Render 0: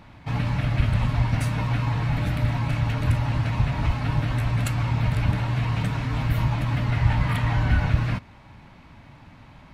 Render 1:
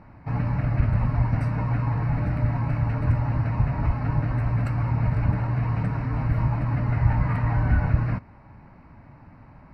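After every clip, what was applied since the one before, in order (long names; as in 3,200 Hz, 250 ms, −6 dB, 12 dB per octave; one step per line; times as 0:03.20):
moving average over 13 samples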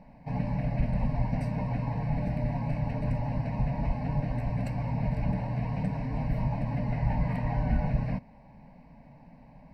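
phaser with its sweep stopped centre 350 Hz, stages 6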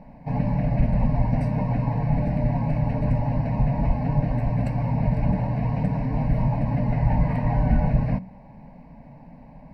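high-shelf EQ 2,000 Hz −8 dB
hum removal 62.15 Hz, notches 3
level +7.5 dB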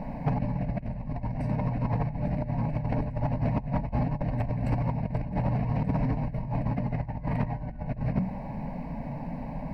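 compressor whose output falls as the input rises −28 dBFS, ratio −0.5
soft clipping −20.5 dBFS, distortion −16 dB
level +2.5 dB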